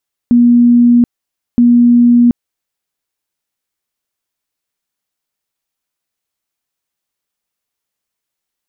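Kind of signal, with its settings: tone bursts 240 Hz, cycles 175, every 1.27 s, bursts 2, -4 dBFS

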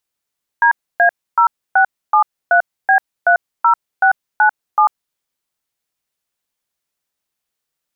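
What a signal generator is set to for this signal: DTMF "DA0673B30697", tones 94 ms, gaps 0.284 s, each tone -10.5 dBFS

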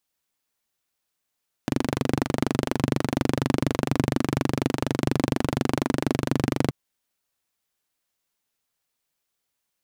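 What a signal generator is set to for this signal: single-cylinder engine model, steady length 5.03 s, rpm 2900, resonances 140/250 Hz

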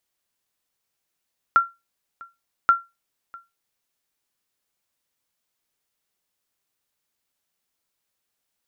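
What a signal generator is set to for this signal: sonar ping 1370 Hz, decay 0.22 s, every 1.13 s, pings 2, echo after 0.65 s, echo -25 dB -7.5 dBFS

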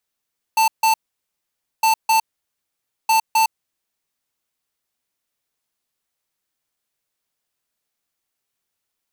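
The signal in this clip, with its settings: beep pattern square 889 Hz, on 0.11 s, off 0.15 s, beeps 2, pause 0.89 s, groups 3, -15 dBFS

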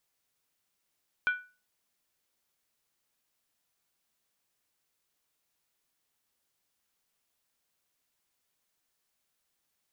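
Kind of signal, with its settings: skin hit, lowest mode 1480 Hz, decay 0.33 s, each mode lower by 10 dB, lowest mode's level -21 dB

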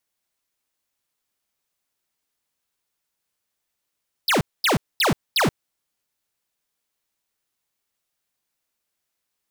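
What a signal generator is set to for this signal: burst of laser zaps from 5300 Hz, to 110 Hz, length 0.13 s square, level -18.5 dB, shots 4, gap 0.23 s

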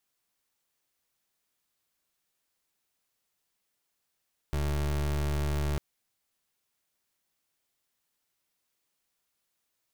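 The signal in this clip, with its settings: pulse 73.1 Hz, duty 29% -29 dBFS 1.25 s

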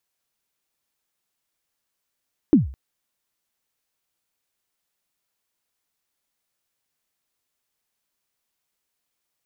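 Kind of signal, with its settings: kick drum length 0.21 s, from 340 Hz, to 66 Hz, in 0.143 s, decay 0.41 s, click off, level -7 dB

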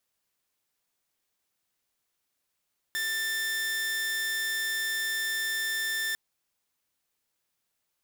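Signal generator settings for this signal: tone saw 1780 Hz -25.5 dBFS 3.20 s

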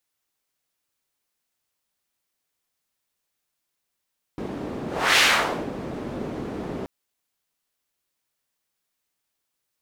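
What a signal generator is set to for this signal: whoosh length 2.48 s, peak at 0.81, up 0.34 s, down 0.53 s, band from 310 Hz, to 2600 Hz, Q 1.1, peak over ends 15 dB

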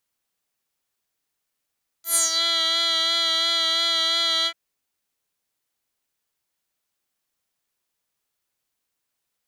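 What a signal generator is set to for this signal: synth patch with vibrato E5, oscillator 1 square, oscillator 2 square, interval +12 st, detune 24 cents, oscillator 2 level -2.5 dB, sub -2 dB, noise -24 dB, filter bandpass, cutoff 2500 Hz, Q 5, filter envelope 2.5 oct, filter decay 0.37 s, filter sustain 20%, attack 0.111 s, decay 0.14 s, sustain -9.5 dB, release 0.07 s, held 2.42 s, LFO 2.9 Hz, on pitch 25 cents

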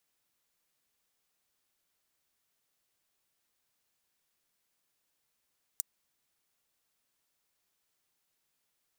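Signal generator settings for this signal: closed hi-hat, high-pass 7100 Hz, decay 0.02 s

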